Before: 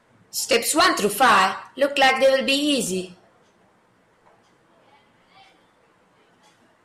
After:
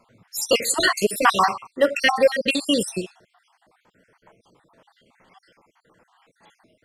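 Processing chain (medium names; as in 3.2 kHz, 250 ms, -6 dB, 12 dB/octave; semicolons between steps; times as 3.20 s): random holes in the spectrogram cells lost 55%; trim +2 dB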